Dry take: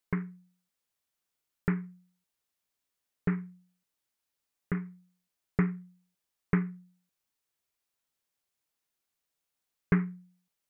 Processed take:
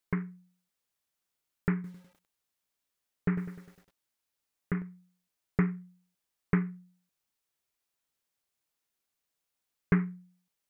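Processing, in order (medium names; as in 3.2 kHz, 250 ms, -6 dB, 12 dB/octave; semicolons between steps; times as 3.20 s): 1.74–4.82 s: bit-crushed delay 101 ms, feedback 55%, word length 9-bit, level -10.5 dB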